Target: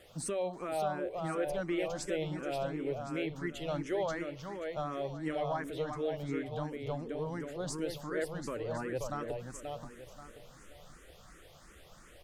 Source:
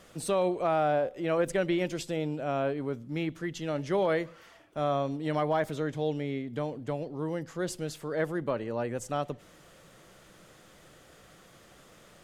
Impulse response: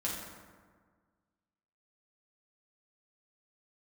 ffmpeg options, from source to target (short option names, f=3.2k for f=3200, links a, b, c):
-filter_complex "[0:a]asubboost=boost=4:cutoff=74,alimiter=limit=-23.5dB:level=0:latency=1:release=221,asplit=2[a][b];[b]aecho=0:1:532|1064|1596|2128:0.562|0.191|0.065|0.0221[c];[a][c]amix=inputs=2:normalize=0,asplit=2[d][e];[e]afreqshift=2.8[f];[d][f]amix=inputs=2:normalize=1"